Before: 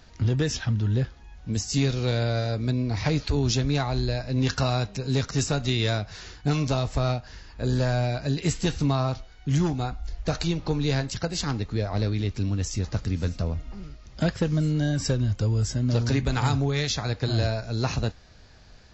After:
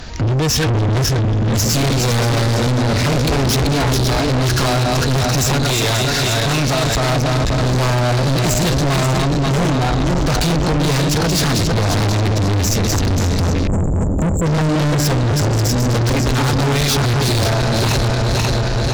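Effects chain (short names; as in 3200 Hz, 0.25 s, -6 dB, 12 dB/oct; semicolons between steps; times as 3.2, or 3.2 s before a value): regenerating reverse delay 0.267 s, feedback 65%, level -6 dB; AGC gain up to 11 dB; sine folder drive 9 dB, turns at -1.5 dBFS; 5.65–7.1 low shelf 230 Hz -10 dB; 13.67–14.46 brick-wall FIR band-stop 670–7000 Hz; limiter -9 dBFS, peak gain reduction 9.5 dB; soft clip -22 dBFS, distortion -9 dB; gain +7.5 dB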